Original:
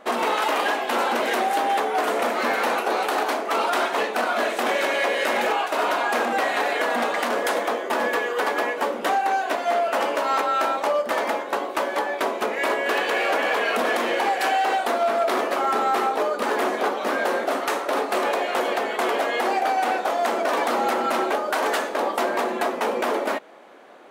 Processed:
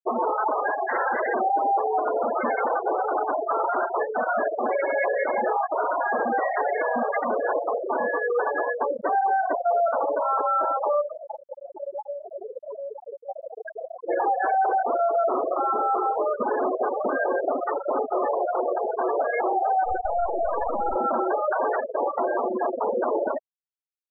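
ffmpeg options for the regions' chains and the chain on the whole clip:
ffmpeg -i in.wav -filter_complex "[0:a]asettb=1/sr,asplit=3[link_01][link_02][link_03];[link_01]atrim=end=0.874[link_04];[link_02]atrim=start=0.87:end=1.28,asetpts=PTS-STARTPTS,afade=type=in:duration=0.004:curve=qsin,afade=type=out:start_time=0.406:duration=0.004:curve=qsin,highpass=260,lowpass=3200,equalizer=frequency=1800:width=3.1:gain=10.5[link_05];[link_03]atrim=start=1.276[link_06];[link_04][link_05]acrossfade=duration=0.004:curve1=hsin:curve2=qsin[link_07];[link_07][link_06]acrossfade=duration=0.004:curve1=qsin:curve2=hsin,asettb=1/sr,asplit=3[link_08][link_09][link_10];[link_08]atrim=end=11.054[link_11];[link_09]atrim=start=11.05:end=14.09,asetpts=PTS-STARTPTS,afade=type=in:duration=0.004:curve=qsin,afade=type=out:start_time=3.036:duration=0.004:curve=qsin,aeval=exprs='val(0)+0.0112*(sin(2*PI*60*n/s)+sin(2*PI*2*60*n/s)/2+sin(2*PI*3*60*n/s)/3+sin(2*PI*4*60*n/s)/4+sin(2*PI*5*60*n/s)/5)':channel_layout=same,acompressor=threshold=-26dB:ratio=12:attack=3.2:release=140:knee=1:detection=peak,lowpass=1700[link_12];[link_10]atrim=start=14.086[link_13];[link_11][link_12]acrossfade=duration=0.004:curve1=hsin:curve2=qsin[link_14];[link_14][link_13]acrossfade=duration=0.004:curve1=qsin:curve2=hsin,asettb=1/sr,asplit=3[link_15][link_16][link_17];[link_15]atrim=end=19.854[link_18];[link_16]atrim=start=19.85:end=20.96,asetpts=PTS-STARTPTS,afade=type=in:duration=0.004:curve=qsin,afade=type=out:start_time=1.106:duration=0.004:curve=qsin,bandreject=frequency=2100:width=5.6,aeval=exprs='clip(val(0),-1,0.0299)':channel_layout=same[link_19];[link_17]atrim=start=20.956[link_20];[link_18][link_19]acrossfade=duration=0.004:curve1=hsin:curve2=qsin[link_21];[link_21][link_20]acrossfade=duration=0.004:curve1=qsin:curve2=hsin,lowpass=2200,afftfilt=real='re*gte(hypot(re,im),0.178)':imag='im*gte(hypot(re,im),0.178)':win_size=1024:overlap=0.75,alimiter=limit=-21dB:level=0:latency=1:release=122,volume=5dB" out.wav

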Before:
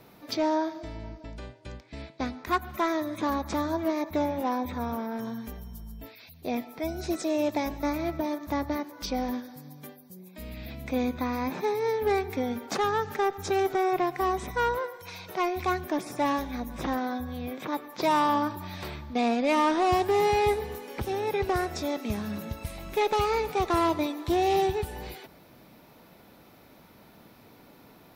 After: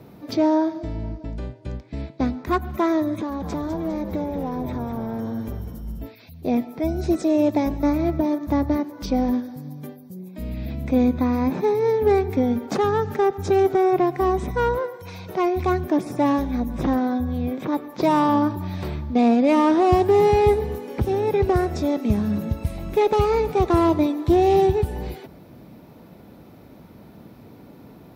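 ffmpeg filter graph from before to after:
ffmpeg -i in.wav -filter_complex "[0:a]asettb=1/sr,asplit=3[link_01][link_02][link_03];[link_01]atrim=end=3.204[link_04];[link_02]atrim=start=3.2:end=6.03,asetpts=PTS-STARTPTS,afade=type=in:duration=0.004:curve=qsin,afade=type=out:start_time=2.826:duration=0.004:curve=qsin,equalizer=frequency=120:width=1.7:gain=-12,acompressor=threshold=-34dB:ratio=2.5:attack=3.2:release=140:knee=1:detection=peak,asplit=7[link_05][link_06][link_07][link_08][link_09][link_10][link_11];[link_06]adelay=202,afreqshift=-120,volume=-8dB[link_12];[link_07]adelay=404,afreqshift=-240,volume=-14.2dB[link_13];[link_08]adelay=606,afreqshift=-360,volume=-20.4dB[link_14];[link_09]adelay=808,afreqshift=-480,volume=-26.6dB[link_15];[link_10]adelay=1010,afreqshift=-600,volume=-32.8dB[link_16];[link_11]adelay=1212,afreqshift=-720,volume=-39dB[link_17];[link_05][link_12][link_13][link_14][link_15][link_16][link_17]amix=inputs=7:normalize=0,atrim=end_sample=124803[link_18];[link_03]atrim=start=6.026[link_19];[link_04][link_18]acrossfade=duration=0.004:curve1=hsin:curve2=qsin[link_20];[link_20][link_19]acrossfade=duration=0.004:curve1=qsin:curve2=hsin,highpass=46,tiltshelf=frequency=640:gain=7,volume=5.5dB" out.wav

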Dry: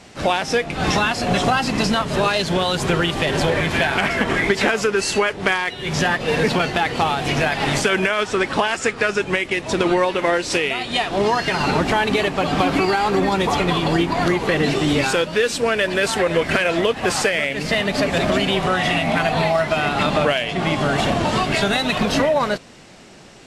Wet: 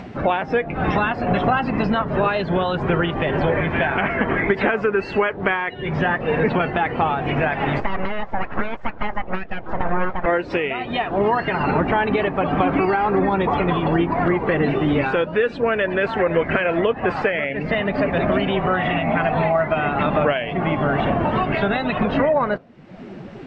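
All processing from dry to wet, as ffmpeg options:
ffmpeg -i in.wav -filter_complex "[0:a]asettb=1/sr,asplit=3[link_01][link_02][link_03];[link_01]atrim=end=7.804[link_04];[link_02]atrim=start=7.8:end=10.26,asetpts=PTS-STARTPTS,afade=type=in:duration=0.004:curve=qsin,afade=type=out:start_time=2.456:duration=0.004:curve=qsin,highshelf=frequency=2900:gain=-10.5,aeval=exprs='abs(val(0))':channel_layout=same[link_05];[link_03]atrim=start=10.256[link_06];[link_04][link_05]acrossfade=duration=0.004:curve1=hsin:curve2=qsin[link_07];[link_07][link_06]acrossfade=duration=0.004:curve1=qsin:curve2=hsin,lowpass=2100,afftdn=noise_reduction=13:noise_floor=-35,acompressor=mode=upward:threshold=-21dB:ratio=2.5" out.wav

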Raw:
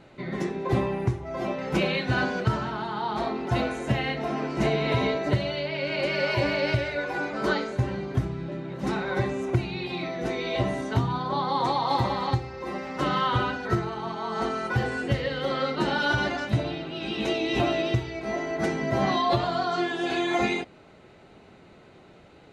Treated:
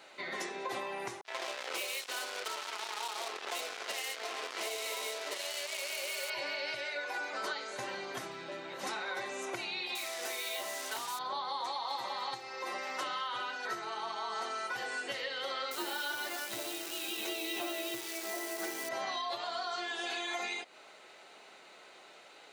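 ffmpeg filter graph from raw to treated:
ffmpeg -i in.wav -filter_complex "[0:a]asettb=1/sr,asplit=3[link_01][link_02][link_03];[link_01]atrim=end=1.214[link_04];[link_02]atrim=start=1.21:end=6.3,asetpts=PTS-STARTPTS,afade=type=in:duration=0.004:curve=qsin,afade=type=out:start_time=5.086:duration=0.004:curve=qsin,highpass=410,equalizer=frequency=440:width_type=q:width=4:gain=6,equalizer=frequency=780:width_type=q:width=4:gain=-4,equalizer=frequency=1600:width_type=q:width=4:gain=-8,lowpass=frequency=4700:width=0.5412,lowpass=frequency=4700:width=1.3066,acrusher=bits=4:mix=0:aa=0.5[link_05];[link_03]atrim=start=6.296[link_06];[link_04][link_05]acrossfade=duration=0.004:curve1=hsin:curve2=qsin[link_07];[link_07][link_06]acrossfade=duration=0.004:curve1=qsin:curve2=hsin,asettb=1/sr,asplit=3[link_08][link_09][link_10];[link_08]atrim=end=9.954[link_11];[link_09]atrim=start=9.95:end=11.19,asetpts=PTS-STARTPTS,afade=type=in:duration=0.004:curve=qsin,afade=type=out:start_time=1.236:duration=0.004:curve=qsin,acrusher=bits=5:mix=0:aa=0.5,highpass=frequency=380:poles=1[link_12];[link_10]atrim=start=11.186[link_13];[link_11][link_12]acrossfade=duration=0.004:curve1=hsin:curve2=qsin[link_14];[link_14][link_13]acrossfade=duration=0.004:curve1=qsin:curve2=hsin,asettb=1/sr,asplit=3[link_15][link_16][link_17];[link_15]atrim=end=15.714[link_18];[link_16]atrim=start=15.71:end=18.89,asetpts=PTS-STARTPTS,afade=type=in:duration=0.004:curve=qsin,afade=type=out:start_time=3.176:duration=0.004:curve=qsin,equalizer=frequency=340:width_type=o:width=0.21:gain=12.5,acrusher=bits=7:dc=4:mix=0:aa=0.000001[link_19];[link_17]atrim=start=18.886[link_20];[link_18][link_19]acrossfade=duration=0.004:curve1=hsin:curve2=qsin[link_21];[link_21][link_20]acrossfade=duration=0.004:curve1=qsin:curve2=hsin,highpass=650,highshelf=frequency=3700:gain=11,acompressor=threshold=-35dB:ratio=6" out.wav

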